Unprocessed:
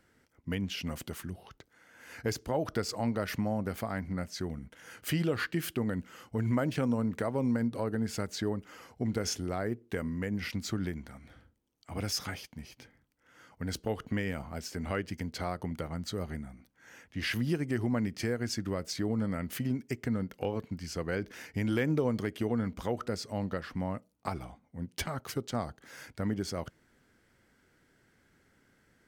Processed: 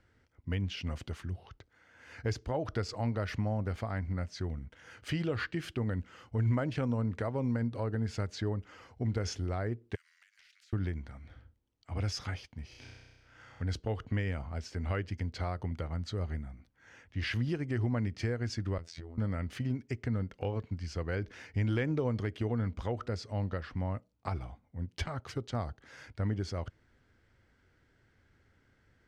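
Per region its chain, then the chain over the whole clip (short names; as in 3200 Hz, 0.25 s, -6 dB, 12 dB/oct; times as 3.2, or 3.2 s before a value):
9.95–10.73 steep high-pass 1500 Hz 72 dB/oct + compressor 12:1, threshold -53 dBFS + spectral compressor 2:1
12.68–13.63 doubler 43 ms -10.5 dB + flutter echo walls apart 5.6 m, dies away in 1.4 s
18.78–19.18 compressor 10:1, threshold -37 dBFS + robotiser 83.3 Hz
whole clip: LPF 5200 Hz 12 dB/oct; resonant low shelf 130 Hz +7 dB, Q 1.5; gain -2.5 dB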